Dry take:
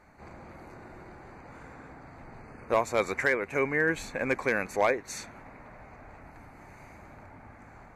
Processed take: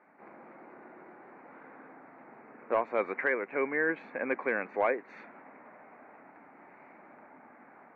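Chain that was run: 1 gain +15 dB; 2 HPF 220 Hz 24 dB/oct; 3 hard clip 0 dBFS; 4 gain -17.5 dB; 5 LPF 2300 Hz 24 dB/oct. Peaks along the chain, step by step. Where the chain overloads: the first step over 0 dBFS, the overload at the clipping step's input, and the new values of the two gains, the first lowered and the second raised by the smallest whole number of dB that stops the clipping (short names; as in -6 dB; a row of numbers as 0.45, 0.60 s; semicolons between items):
-0.5, +4.0, 0.0, -17.5, -16.5 dBFS; step 2, 4.0 dB; step 1 +11 dB, step 4 -13.5 dB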